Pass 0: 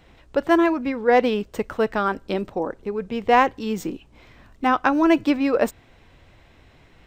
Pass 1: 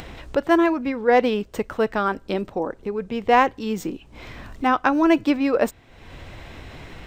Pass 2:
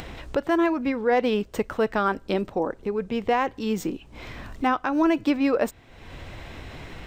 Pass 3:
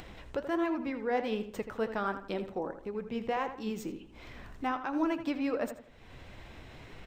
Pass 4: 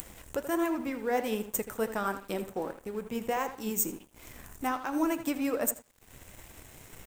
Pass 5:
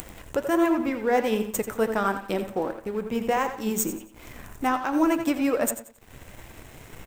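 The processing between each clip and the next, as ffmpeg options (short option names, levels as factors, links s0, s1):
-af "acompressor=mode=upward:threshold=0.0501:ratio=2.5"
-af "alimiter=limit=0.224:level=0:latency=1:release=160"
-filter_complex "[0:a]flanger=delay=2.6:depth=7.1:regen=74:speed=1.4:shape=triangular,asplit=2[s0][s1];[s1]adelay=81,lowpass=f=3400:p=1,volume=0.316,asplit=2[s2][s3];[s3]adelay=81,lowpass=f=3400:p=1,volume=0.37,asplit=2[s4][s5];[s5]adelay=81,lowpass=f=3400:p=1,volume=0.37,asplit=2[s6][s7];[s7]adelay=81,lowpass=f=3400:p=1,volume=0.37[s8];[s0][s2][s4][s6][s8]amix=inputs=5:normalize=0,volume=0.531"
-af "aexciter=amount=13.4:drive=5:freq=6600,bandreject=f=399.4:t=h:w=4,bandreject=f=798.8:t=h:w=4,bandreject=f=1198.2:t=h:w=4,bandreject=f=1597.6:t=h:w=4,bandreject=f=1997:t=h:w=4,bandreject=f=2396.4:t=h:w=4,bandreject=f=2795.8:t=h:w=4,bandreject=f=3195.2:t=h:w=4,bandreject=f=3594.6:t=h:w=4,bandreject=f=3994:t=h:w=4,bandreject=f=4393.4:t=h:w=4,bandreject=f=4792.8:t=h:w=4,bandreject=f=5192.2:t=h:w=4,bandreject=f=5591.6:t=h:w=4,bandreject=f=5991:t=h:w=4,bandreject=f=6390.4:t=h:w=4,bandreject=f=6789.8:t=h:w=4,bandreject=f=7189.2:t=h:w=4,bandreject=f=7588.6:t=h:w=4,bandreject=f=7988:t=h:w=4,bandreject=f=8387.4:t=h:w=4,bandreject=f=8786.8:t=h:w=4,bandreject=f=9186.2:t=h:w=4,bandreject=f=9585.6:t=h:w=4,bandreject=f=9985:t=h:w=4,bandreject=f=10384.4:t=h:w=4,bandreject=f=10783.8:t=h:w=4,bandreject=f=11183.2:t=h:w=4,bandreject=f=11582.6:t=h:w=4,bandreject=f=11982:t=h:w=4,bandreject=f=12381.4:t=h:w=4,aeval=exprs='sgn(val(0))*max(abs(val(0))-0.00251,0)':c=same,volume=1.26"
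-filter_complex "[0:a]asplit=2[s0][s1];[s1]adynamicsmooth=sensitivity=7.5:basefreq=5200,volume=1.19[s2];[s0][s2]amix=inputs=2:normalize=0,aecho=1:1:90|180|270:0.224|0.0694|0.0215"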